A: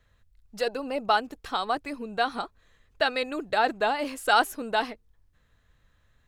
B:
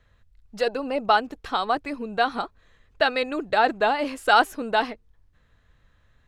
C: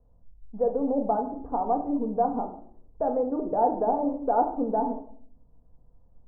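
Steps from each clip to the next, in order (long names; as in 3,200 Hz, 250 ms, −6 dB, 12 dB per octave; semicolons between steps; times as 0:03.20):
high-shelf EQ 7,400 Hz −11.5 dB; level +4 dB
elliptic low-pass filter 880 Hz, stop band 80 dB; in parallel at +1 dB: brickwall limiter −20 dBFS, peak gain reduction 9 dB; on the sum: rectangular room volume 720 cubic metres, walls furnished, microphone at 1.8 metres; level −7.5 dB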